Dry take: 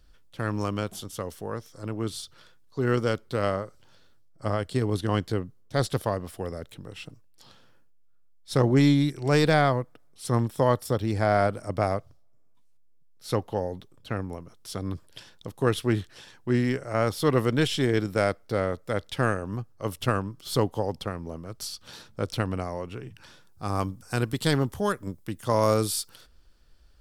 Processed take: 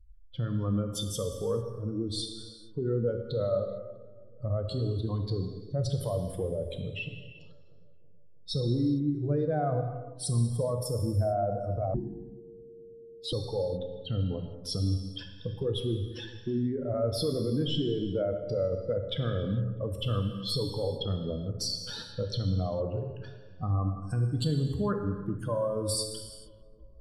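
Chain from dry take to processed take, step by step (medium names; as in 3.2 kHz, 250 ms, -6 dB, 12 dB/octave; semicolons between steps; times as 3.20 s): spectral contrast enhancement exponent 2.5; in parallel at +2.5 dB: compression, threshold -32 dBFS, peak gain reduction 14.5 dB; on the sum: peak limiter -19.5 dBFS, peak gain reduction 9.5 dB; on a send: filtered feedback delay 324 ms, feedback 59%, low-pass 1.3 kHz, level -21 dB; on the sum: gated-style reverb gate 480 ms falling, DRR 4 dB; 11.94–13.33 s: frequency shift -460 Hz; trim -3 dB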